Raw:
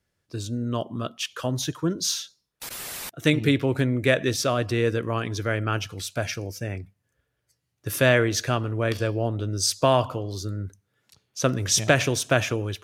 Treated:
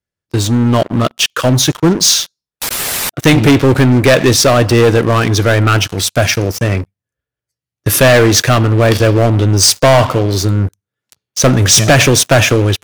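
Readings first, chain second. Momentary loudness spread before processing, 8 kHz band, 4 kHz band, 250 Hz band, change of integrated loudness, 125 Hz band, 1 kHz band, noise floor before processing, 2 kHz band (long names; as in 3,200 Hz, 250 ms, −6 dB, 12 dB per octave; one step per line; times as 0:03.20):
13 LU, +15.5 dB, +15.5 dB, +14.5 dB, +14.0 dB, +15.5 dB, +13.5 dB, −77 dBFS, +12.0 dB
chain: leveller curve on the samples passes 5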